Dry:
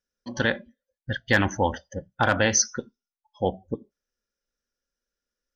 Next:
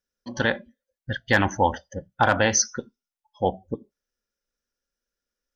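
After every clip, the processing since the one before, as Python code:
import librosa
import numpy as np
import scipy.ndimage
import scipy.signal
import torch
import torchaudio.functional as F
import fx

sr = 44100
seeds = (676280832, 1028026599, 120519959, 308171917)

y = fx.dynamic_eq(x, sr, hz=850.0, q=1.7, threshold_db=-35.0, ratio=4.0, max_db=5)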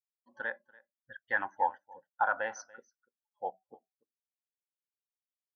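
y = fx.bandpass_q(x, sr, hz=1200.0, q=1.0)
y = y + 10.0 ** (-16.0 / 20.0) * np.pad(y, (int(288 * sr / 1000.0), 0))[:len(y)]
y = fx.spectral_expand(y, sr, expansion=1.5)
y = y * 10.0 ** (-8.0 / 20.0)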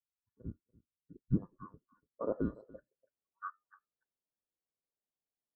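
y = fx.band_invert(x, sr, width_hz=2000)
y = fx.filter_sweep_lowpass(y, sr, from_hz=110.0, to_hz=610.0, start_s=0.67, end_s=3.35, q=1.1)
y = y * 10.0 ** (4.5 / 20.0)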